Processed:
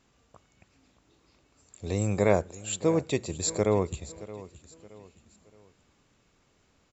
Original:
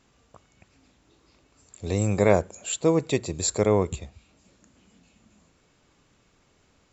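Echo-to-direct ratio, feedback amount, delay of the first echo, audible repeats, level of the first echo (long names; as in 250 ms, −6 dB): −16.5 dB, 38%, 622 ms, 3, −17.0 dB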